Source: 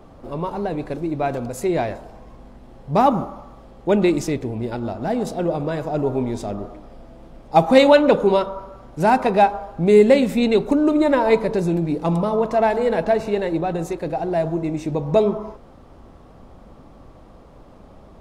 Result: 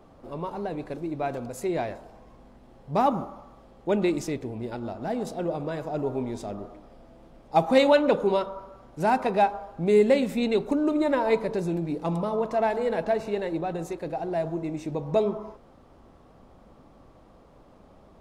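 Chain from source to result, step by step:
low-shelf EQ 120 Hz −5 dB
level −6.5 dB

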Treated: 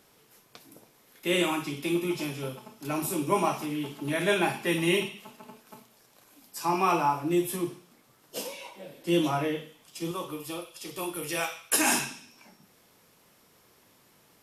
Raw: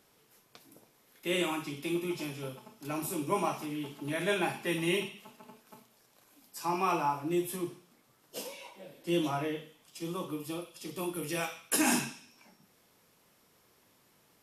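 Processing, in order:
0:10.11–0:12.11: parametric band 210 Hz −9.5 dB 1.4 octaves
level +5 dB

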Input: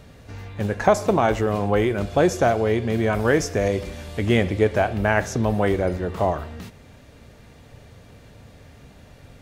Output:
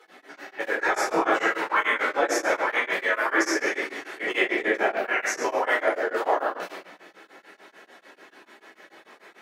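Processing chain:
harmonic-percussive split with one part muted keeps percussive
high-pass filter 310 Hz 24 dB per octave
parametric band 1,700 Hz +11 dB 1.8 octaves
brickwall limiter −14.5 dBFS, peak gain reduction 15.5 dB
rectangular room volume 600 cubic metres, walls mixed, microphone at 4.2 metres
tremolo along a rectified sine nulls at 6.8 Hz
level −4.5 dB

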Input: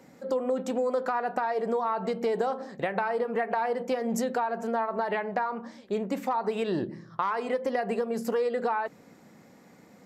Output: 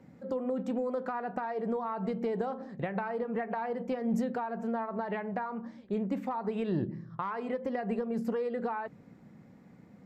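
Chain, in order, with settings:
bass and treble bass +13 dB, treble −10 dB
level −7 dB

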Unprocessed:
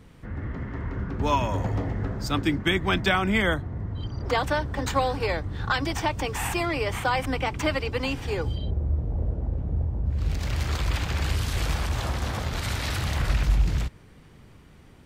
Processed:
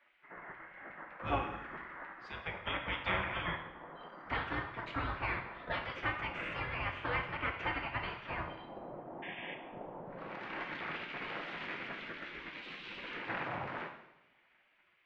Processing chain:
0:09.22–0:09.55: sound drawn into the spectrogram noise 1,600–3,600 Hz −39 dBFS
three-way crossover with the lows and the highs turned down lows −19 dB, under 520 Hz, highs −17 dB, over 2,800 Hz
0:01.38–0:02.55: downward compressor 3 to 1, threshold −33 dBFS, peak gain reduction 6.5 dB
head-to-tape spacing loss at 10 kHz 45 dB
gate on every frequency bin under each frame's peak −15 dB weak
coupled-rooms reverb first 0.81 s, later 2.1 s, from −22 dB, DRR 3 dB
level +7.5 dB

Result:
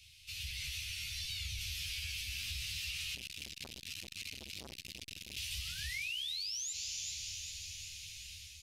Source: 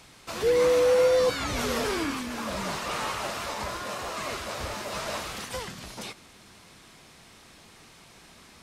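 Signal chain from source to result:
parametric band 640 Hz +13 dB 2 octaves
automatic gain control gain up to 9 dB
parametric band 7,700 Hz −6.5 dB 0.86 octaves
0:05.22–0:06.72: sound drawn into the spectrogram rise 640–7,400 Hz −21 dBFS
Chebyshev band-stop filter 110–2,600 Hz, order 4
double-tracking delay 13 ms −2 dB
four-comb reverb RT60 3.9 s, combs from 33 ms, DRR 13.5 dB
brickwall limiter −22 dBFS, peak gain reduction 11 dB
downward compressor, threshold −33 dBFS, peak gain reduction 7.5 dB
delay with a high-pass on its return 387 ms, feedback 60%, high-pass 4,800 Hz, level −7 dB
0:03.15–0:05.37: saturating transformer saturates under 1,500 Hz
level −4.5 dB

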